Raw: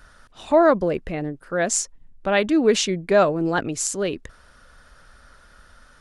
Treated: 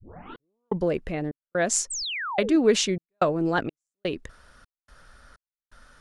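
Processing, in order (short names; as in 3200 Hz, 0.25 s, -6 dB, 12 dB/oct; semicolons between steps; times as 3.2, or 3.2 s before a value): tape start at the beginning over 0.85 s; step gate "xxx...xxxxx..x" 126 bpm -60 dB; painted sound fall, 1.9–2.57, 270–8800 Hz -29 dBFS; gain -2 dB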